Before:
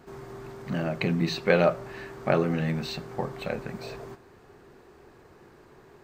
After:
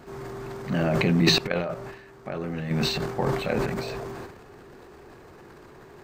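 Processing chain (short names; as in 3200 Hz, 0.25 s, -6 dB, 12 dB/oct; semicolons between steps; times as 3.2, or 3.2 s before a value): 1.32–2.71 level quantiser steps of 18 dB; transient shaper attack -2 dB, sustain +12 dB; gain +4.5 dB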